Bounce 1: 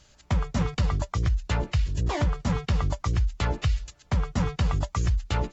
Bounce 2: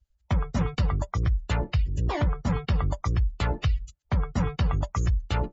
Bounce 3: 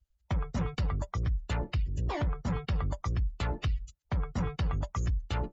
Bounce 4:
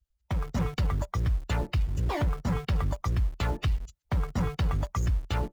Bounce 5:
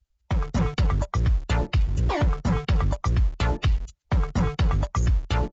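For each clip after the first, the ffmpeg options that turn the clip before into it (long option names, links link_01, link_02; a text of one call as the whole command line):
ffmpeg -i in.wav -af "afftdn=noise_reduction=32:noise_floor=-41" out.wav
ffmpeg -i in.wav -af "asoftclip=type=tanh:threshold=-18dB,volume=-4dB" out.wav
ffmpeg -i in.wav -filter_complex "[0:a]dynaudnorm=framelen=260:gausssize=3:maxgain=4dB,asplit=2[link_01][link_02];[link_02]acrusher=bits=5:mix=0:aa=0.000001,volume=-10dB[link_03];[link_01][link_03]amix=inputs=2:normalize=0,volume=-3dB" out.wav
ffmpeg -i in.wav -af "aresample=16000,aresample=44100,volume=5dB" out.wav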